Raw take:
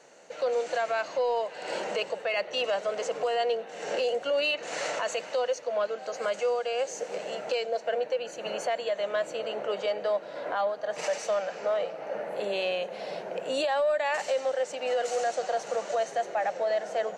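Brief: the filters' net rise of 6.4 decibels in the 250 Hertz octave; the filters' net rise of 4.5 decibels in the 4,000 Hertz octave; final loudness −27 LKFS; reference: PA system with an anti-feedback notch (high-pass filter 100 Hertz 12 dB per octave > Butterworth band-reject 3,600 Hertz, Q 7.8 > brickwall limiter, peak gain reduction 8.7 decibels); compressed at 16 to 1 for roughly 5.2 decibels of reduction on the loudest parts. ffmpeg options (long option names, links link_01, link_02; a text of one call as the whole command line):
ffmpeg -i in.wav -af "equalizer=frequency=250:width_type=o:gain=8.5,equalizer=frequency=4000:width_type=o:gain=7,acompressor=threshold=-27dB:ratio=16,highpass=100,asuperstop=centerf=3600:order=8:qfactor=7.8,volume=7.5dB,alimiter=limit=-18.5dB:level=0:latency=1" out.wav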